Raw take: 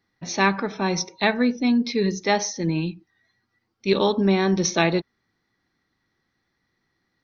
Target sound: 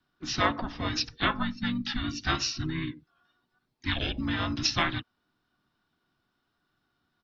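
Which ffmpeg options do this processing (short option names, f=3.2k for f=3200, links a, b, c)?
-filter_complex "[0:a]afreqshift=-480,acrossover=split=440|2100[a][b][c];[a]acompressor=threshold=-28dB:ratio=16[d];[d][b][c]amix=inputs=3:normalize=0,equalizer=f=480:t=o:w=0.81:g=-7.5,asplit=4[e][f][g][h];[f]asetrate=22050,aresample=44100,atempo=2,volume=-10dB[i];[g]asetrate=35002,aresample=44100,atempo=1.25992,volume=-6dB[j];[h]asetrate=52444,aresample=44100,atempo=0.840896,volume=-16dB[k];[e][i][j][k]amix=inputs=4:normalize=0,volume=-3dB"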